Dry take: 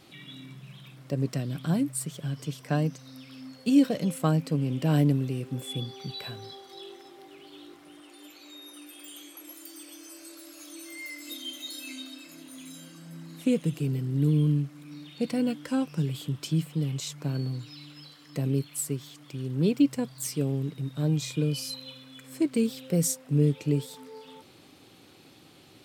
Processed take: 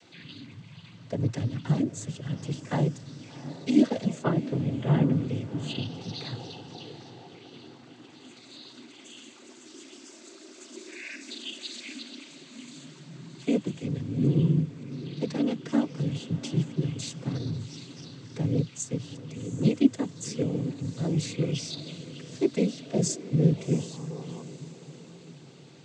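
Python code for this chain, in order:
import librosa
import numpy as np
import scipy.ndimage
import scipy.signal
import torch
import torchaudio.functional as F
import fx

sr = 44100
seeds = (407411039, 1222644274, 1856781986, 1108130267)

y = fx.lowpass(x, sr, hz=3100.0, slope=24, at=(4.23, 5.12))
y = fx.noise_vocoder(y, sr, seeds[0], bands=16)
y = fx.echo_diffused(y, sr, ms=731, feedback_pct=43, wet_db=-14.0)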